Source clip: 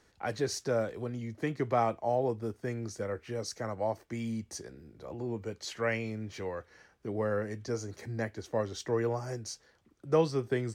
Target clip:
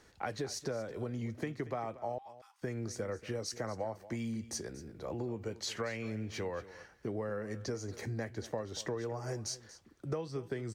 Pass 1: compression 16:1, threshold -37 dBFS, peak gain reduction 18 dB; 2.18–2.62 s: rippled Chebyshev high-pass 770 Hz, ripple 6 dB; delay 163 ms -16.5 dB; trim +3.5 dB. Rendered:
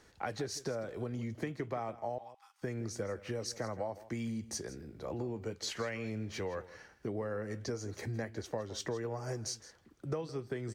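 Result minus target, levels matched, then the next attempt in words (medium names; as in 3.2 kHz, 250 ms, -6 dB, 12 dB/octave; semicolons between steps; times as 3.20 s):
echo 70 ms early
compression 16:1, threshold -37 dBFS, peak gain reduction 18 dB; 2.18–2.62 s: rippled Chebyshev high-pass 770 Hz, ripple 6 dB; delay 233 ms -16.5 dB; trim +3.5 dB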